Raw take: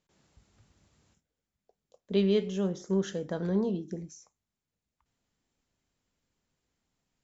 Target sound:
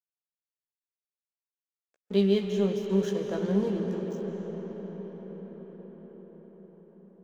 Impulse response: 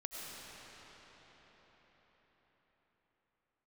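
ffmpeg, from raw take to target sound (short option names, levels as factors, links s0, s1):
-filter_complex "[0:a]highpass=f=71:w=0.5412,highpass=f=71:w=1.3066,aeval=exprs='sgn(val(0))*max(abs(val(0))-0.00376,0)':c=same,asplit=2[s0][s1];[1:a]atrim=start_sample=2205,asetrate=29988,aresample=44100,adelay=15[s2];[s1][s2]afir=irnorm=-1:irlink=0,volume=0.596[s3];[s0][s3]amix=inputs=2:normalize=0"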